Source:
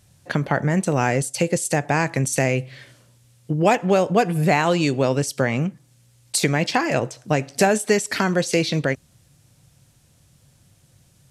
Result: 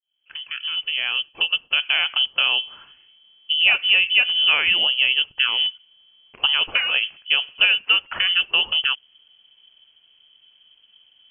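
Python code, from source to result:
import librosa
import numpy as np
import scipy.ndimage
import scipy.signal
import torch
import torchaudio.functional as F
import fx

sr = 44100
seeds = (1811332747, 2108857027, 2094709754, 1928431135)

y = fx.fade_in_head(x, sr, length_s=1.73)
y = fx.high_shelf(y, sr, hz=2100.0, db=-11.5)
y = fx.freq_invert(y, sr, carrier_hz=3200)
y = y * 10.0 ** (1.0 / 20.0)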